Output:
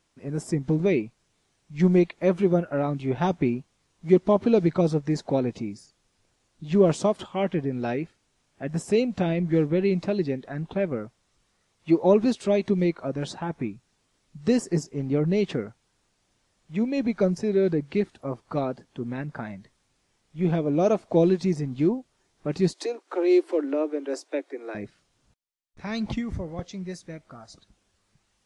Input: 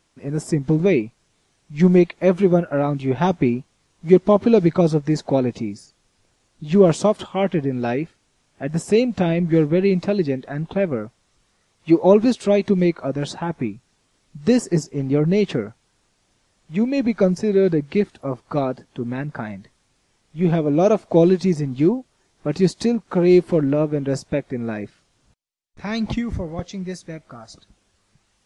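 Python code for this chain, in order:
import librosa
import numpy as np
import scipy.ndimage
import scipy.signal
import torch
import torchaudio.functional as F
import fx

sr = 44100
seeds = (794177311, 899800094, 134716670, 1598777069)

y = fx.steep_highpass(x, sr, hz=280.0, slope=96, at=(22.73, 24.75))
y = y * 10.0 ** (-5.5 / 20.0)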